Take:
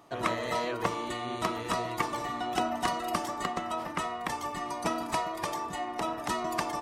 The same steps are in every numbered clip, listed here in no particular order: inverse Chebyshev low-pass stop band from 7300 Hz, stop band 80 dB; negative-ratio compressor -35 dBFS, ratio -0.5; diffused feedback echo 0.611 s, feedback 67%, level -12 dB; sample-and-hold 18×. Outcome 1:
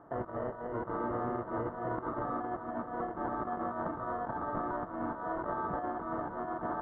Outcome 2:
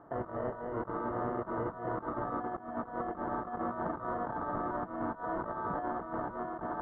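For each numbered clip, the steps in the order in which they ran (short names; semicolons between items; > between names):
negative-ratio compressor > diffused feedback echo > sample-and-hold > inverse Chebyshev low-pass; diffused feedback echo > sample-and-hold > negative-ratio compressor > inverse Chebyshev low-pass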